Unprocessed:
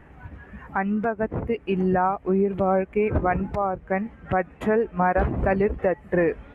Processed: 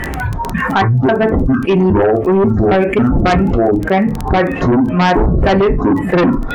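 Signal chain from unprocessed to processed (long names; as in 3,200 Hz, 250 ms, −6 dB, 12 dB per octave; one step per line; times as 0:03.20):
pitch shifter gated in a rhythm −10 semitones, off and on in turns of 271 ms
noise reduction from a noise print of the clip's start 13 dB
on a send at −4.5 dB: convolution reverb RT60 0.20 s, pre-delay 3 ms
on the sum: surface crackle 14 per second −45 dBFS
in parallel at −9 dB: sine wavefolder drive 11 dB, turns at −7.5 dBFS
on the sum: envelope flattener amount 70%
level +2.5 dB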